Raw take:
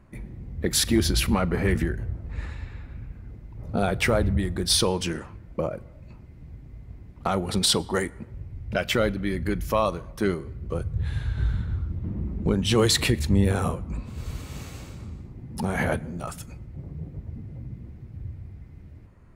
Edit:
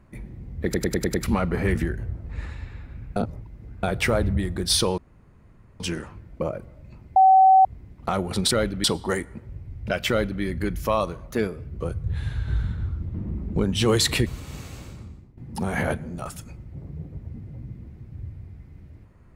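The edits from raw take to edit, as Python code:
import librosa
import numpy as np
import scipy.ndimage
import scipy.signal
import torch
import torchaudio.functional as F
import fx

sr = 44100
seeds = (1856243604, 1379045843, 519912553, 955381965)

y = fx.edit(x, sr, fx.stutter_over(start_s=0.64, slice_s=0.1, count=6),
    fx.reverse_span(start_s=3.16, length_s=0.67),
    fx.insert_room_tone(at_s=4.98, length_s=0.82),
    fx.bleep(start_s=6.34, length_s=0.49, hz=762.0, db=-10.5),
    fx.duplicate(start_s=8.94, length_s=0.33, to_s=7.69),
    fx.speed_span(start_s=10.15, length_s=0.44, speed=1.12),
    fx.cut(start_s=13.16, length_s=1.12),
    fx.fade_out_to(start_s=14.93, length_s=0.46, floor_db=-15.0), tone=tone)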